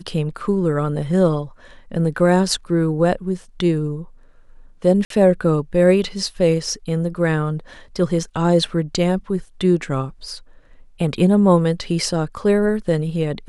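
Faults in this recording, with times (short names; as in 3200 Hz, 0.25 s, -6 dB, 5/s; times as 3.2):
5.05–5.1 gap 53 ms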